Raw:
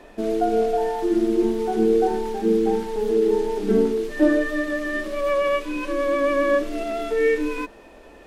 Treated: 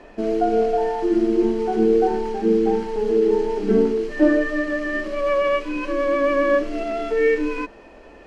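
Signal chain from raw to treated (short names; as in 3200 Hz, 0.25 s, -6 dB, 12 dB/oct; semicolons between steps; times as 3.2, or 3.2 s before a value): LPF 5500 Hz 12 dB/oct; notch 3600 Hz, Q 7.7; gain +1.5 dB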